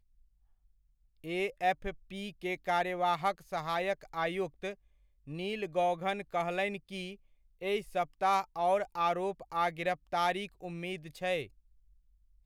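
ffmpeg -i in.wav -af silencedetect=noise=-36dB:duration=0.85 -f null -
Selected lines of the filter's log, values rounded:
silence_start: 0.00
silence_end: 1.26 | silence_duration: 1.26
silence_start: 11.44
silence_end: 12.46 | silence_duration: 1.01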